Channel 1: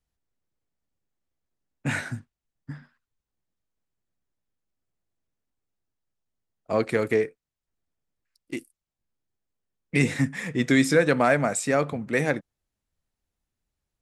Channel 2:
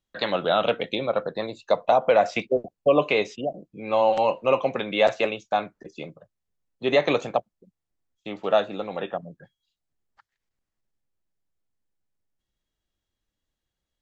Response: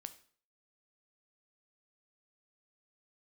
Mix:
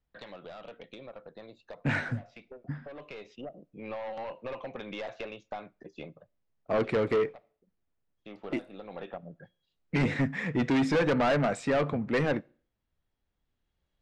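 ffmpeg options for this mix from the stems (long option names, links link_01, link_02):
-filter_complex "[0:a]highshelf=frequency=3300:gain=-6.5,volume=21dB,asoftclip=hard,volume=-21dB,volume=0dB,asplit=3[link_01][link_02][link_03];[link_02]volume=-10dB[link_04];[1:a]aeval=exprs='0.447*(cos(1*acos(clip(val(0)/0.447,-1,1)))-cos(1*PI/2))+0.126*(cos(5*acos(clip(val(0)/0.447,-1,1)))-cos(5*PI/2))':channel_layout=same,acompressor=threshold=-22dB:ratio=10,aeval=exprs='(tanh(4.47*val(0)+0.5)-tanh(0.5))/4.47':channel_layout=same,volume=-5dB,afade=type=in:start_time=1.7:duration=0.71:silence=0.446684,afade=type=in:start_time=8.39:duration=0.57:silence=0.446684,asplit=2[link_05][link_06];[link_06]volume=-12dB[link_07];[link_03]apad=whole_len=618085[link_08];[link_05][link_08]sidechaincompress=threshold=-43dB:ratio=8:attack=27:release=1230[link_09];[2:a]atrim=start_sample=2205[link_10];[link_04][link_07]amix=inputs=2:normalize=0[link_11];[link_11][link_10]afir=irnorm=-1:irlink=0[link_12];[link_01][link_09][link_12]amix=inputs=3:normalize=0,lowpass=4000,asoftclip=type=tanh:threshold=-19.5dB"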